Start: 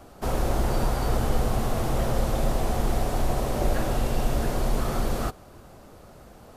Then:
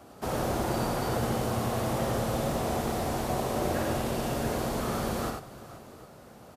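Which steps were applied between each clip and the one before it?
high-pass filter 94 Hz 12 dB per octave
on a send: multi-tap delay 58/92/482/754 ms −7/−5.5/−17.5/−20 dB
on the sum: level −2.5 dB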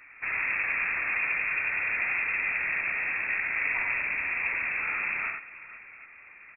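voice inversion scrambler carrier 2,600 Hz

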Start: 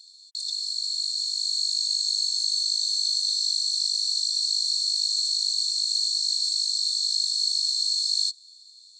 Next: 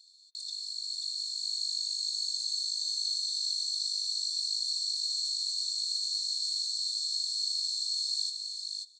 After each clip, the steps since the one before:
single-tap delay 536 ms −5 dB
on a send at −14 dB: convolution reverb, pre-delay 3 ms
on the sum: level −8.5 dB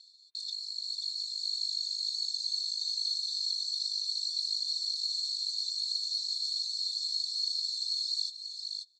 low-pass filter 4,900 Hz 12 dB per octave
reverb reduction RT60 1.1 s
level +4.5 dB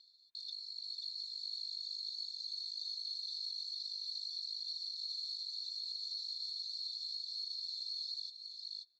high-frequency loss of the air 210 metres
brickwall limiter −33.5 dBFS, peak gain reduction 5.5 dB

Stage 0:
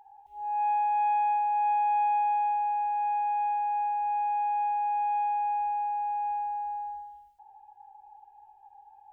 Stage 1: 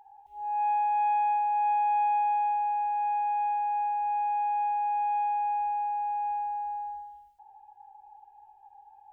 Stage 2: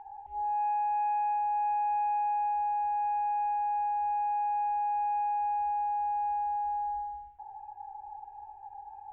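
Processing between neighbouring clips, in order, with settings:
no processing that can be heard
low-pass filter 2,300 Hz 24 dB per octave; downward compressor 3 to 1, threshold −40 dBFS, peak gain reduction 11.5 dB; low-shelf EQ 160 Hz +8 dB; level +7.5 dB

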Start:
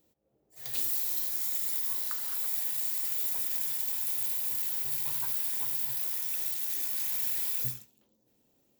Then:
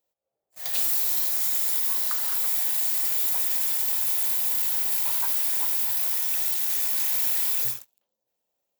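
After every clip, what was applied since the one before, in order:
low shelf with overshoot 430 Hz −12 dB, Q 1.5
leveller curve on the samples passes 3
level −2.5 dB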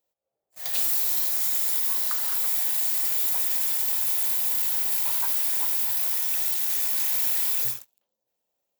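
no processing that can be heard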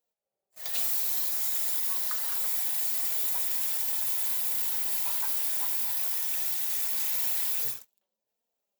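flanger 1.3 Hz, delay 4.2 ms, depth 1.2 ms, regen +32%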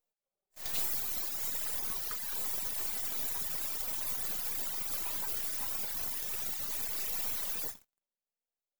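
gain on one half-wave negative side −12 dB
reverb reduction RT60 1.7 s

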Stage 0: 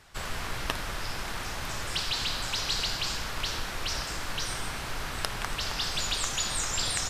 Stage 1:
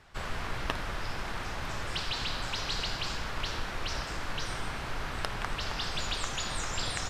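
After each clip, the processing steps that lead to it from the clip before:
low-pass filter 2,700 Hz 6 dB per octave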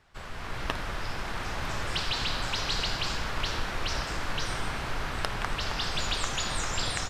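automatic gain control gain up to 9 dB
level −5.5 dB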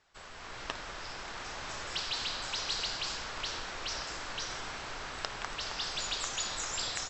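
linear-phase brick-wall low-pass 8,000 Hz
bass and treble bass −9 dB, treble +7 dB
level −6.5 dB

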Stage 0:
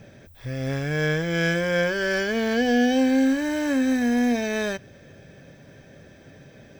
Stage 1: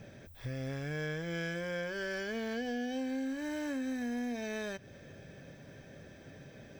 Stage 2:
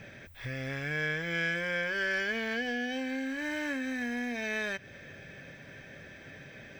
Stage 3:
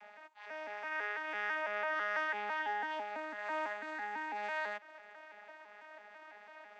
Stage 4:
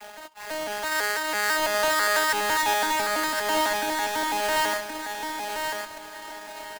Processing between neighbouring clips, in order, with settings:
downward compressor 4 to 1, threshold −32 dBFS, peak gain reduction 13.5 dB; level −4 dB
parametric band 2,100 Hz +12 dB 1.5 octaves
vocoder with an arpeggio as carrier bare fifth, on G#3, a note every 166 ms; high-pass with resonance 880 Hz, resonance Q 6.2; level −2.5 dB
each half-wave held at its own peak; on a send: repeating echo 1,073 ms, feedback 24%, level −5 dB; on the sum: level +9 dB

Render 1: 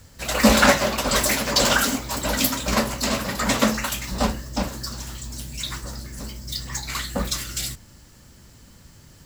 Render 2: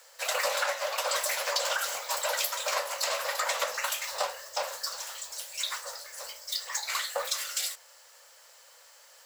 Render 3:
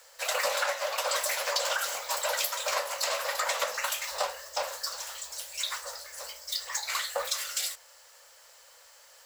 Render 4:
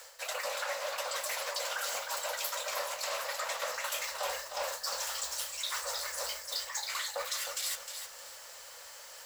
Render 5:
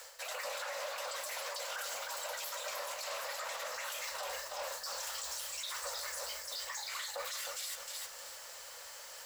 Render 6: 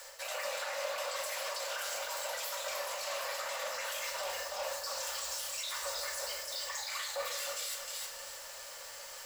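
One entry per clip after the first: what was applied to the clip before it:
elliptic high-pass filter 510 Hz, stop band 40 dB; downward compressor 10 to 1, threshold −26 dBFS, peak gain reduction 15 dB
low-shelf EQ 130 Hz +8 dB
reversed playback; downward compressor 12 to 1, threshold −39 dBFS, peak gain reduction 16 dB; reversed playback; feedback echo at a low word length 309 ms, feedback 35%, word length 10 bits, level −7 dB; level +6 dB
brickwall limiter −31 dBFS, peak gain reduction 10.5 dB
convolution reverb RT60 1.2 s, pre-delay 3 ms, DRR 1 dB

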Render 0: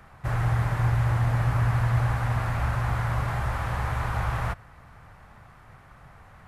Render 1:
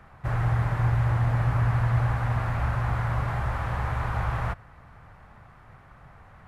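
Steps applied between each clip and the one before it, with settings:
high-shelf EQ 4,300 Hz −9 dB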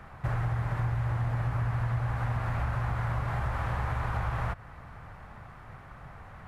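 downward compressor 5 to 1, threshold −31 dBFS, peak gain reduction 11.5 dB
level +3.5 dB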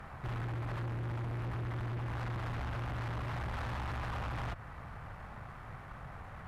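tube saturation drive 37 dB, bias 0.35
level +1.5 dB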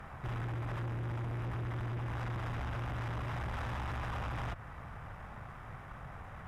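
notch filter 4,300 Hz, Q 8.6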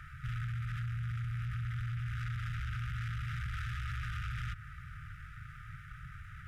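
linear-phase brick-wall band-stop 170–1,200 Hz
level +1 dB

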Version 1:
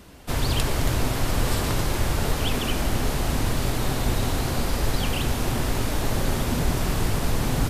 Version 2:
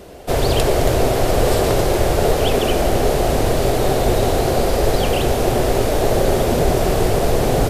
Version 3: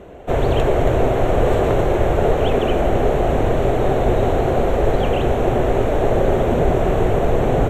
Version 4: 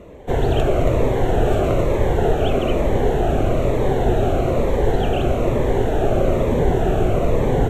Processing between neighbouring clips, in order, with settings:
flat-topped bell 520 Hz +11 dB 1.3 octaves; level +4.5 dB
moving average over 9 samples
phaser whose notches keep moving one way falling 1.1 Hz

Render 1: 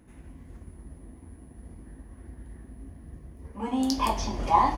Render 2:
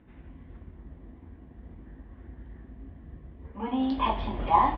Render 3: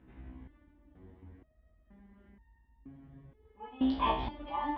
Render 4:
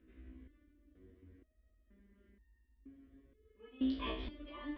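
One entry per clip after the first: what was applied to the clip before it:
elliptic low-pass filter 3,500 Hz, stop band 50 dB
step-sequenced resonator 2.1 Hz 64–920 Hz; level +5 dB
phaser with its sweep stopped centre 350 Hz, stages 4; level −3.5 dB

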